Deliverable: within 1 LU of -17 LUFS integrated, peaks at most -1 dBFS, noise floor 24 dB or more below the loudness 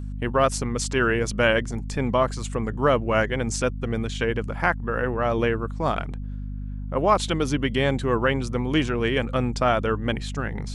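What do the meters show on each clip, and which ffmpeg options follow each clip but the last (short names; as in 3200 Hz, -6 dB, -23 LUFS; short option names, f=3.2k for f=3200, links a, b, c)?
hum 50 Hz; harmonics up to 250 Hz; hum level -29 dBFS; loudness -24.0 LUFS; peak -7.0 dBFS; loudness target -17.0 LUFS
-> -af "bandreject=f=50:t=h:w=6,bandreject=f=100:t=h:w=6,bandreject=f=150:t=h:w=6,bandreject=f=200:t=h:w=6,bandreject=f=250:t=h:w=6"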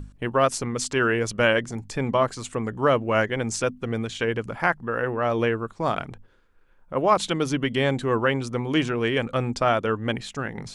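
hum none; loudness -24.5 LUFS; peak -6.5 dBFS; loudness target -17.0 LUFS
-> -af "volume=7.5dB,alimiter=limit=-1dB:level=0:latency=1"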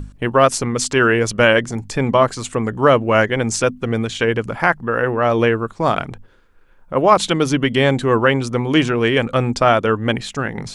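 loudness -17.0 LUFS; peak -1.0 dBFS; noise floor -48 dBFS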